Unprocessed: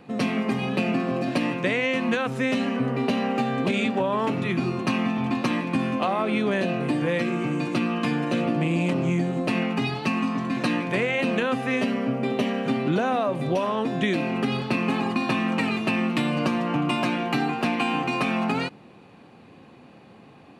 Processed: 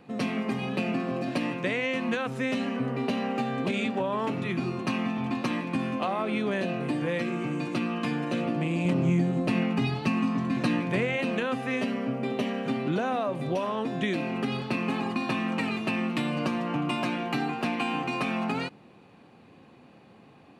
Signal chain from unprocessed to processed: 8.85–11.17 s: bass shelf 210 Hz +8.5 dB; trim -4.5 dB

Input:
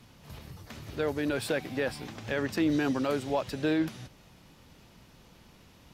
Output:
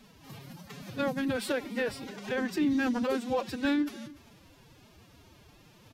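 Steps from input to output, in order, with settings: delay 293 ms -19.5 dB; formant-preserving pitch shift +10.5 st

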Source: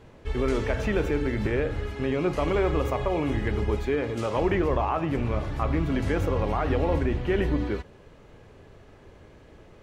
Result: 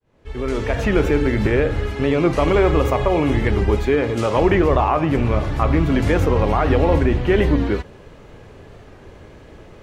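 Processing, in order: fade-in on the opening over 1.01 s; warped record 45 rpm, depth 100 cents; trim +8.5 dB

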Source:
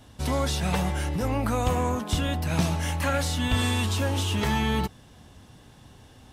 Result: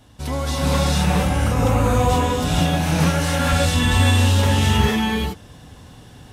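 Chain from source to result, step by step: gated-style reverb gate 490 ms rising, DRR -6.5 dB

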